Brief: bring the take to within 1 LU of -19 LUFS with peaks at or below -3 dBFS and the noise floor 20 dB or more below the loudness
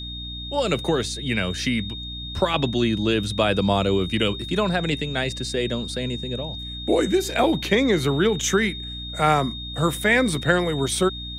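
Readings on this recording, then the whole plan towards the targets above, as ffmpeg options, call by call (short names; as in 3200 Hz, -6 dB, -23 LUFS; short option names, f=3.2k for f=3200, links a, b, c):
hum 60 Hz; harmonics up to 300 Hz; hum level -34 dBFS; steady tone 3700 Hz; tone level -33 dBFS; loudness -23.0 LUFS; peak -4.5 dBFS; loudness target -19.0 LUFS
-> -af "bandreject=f=60:t=h:w=4,bandreject=f=120:t=h:w=4,bandreject=f=180:t=h:w=4,bandreject=f=240:t=h:w=4,bandreject=f=300:t=h:w=4"
-af "bandreject=f=3.7k:w=30"
-af "volume=4dB,alimiter=limit=-3dB:level=0:latency=1"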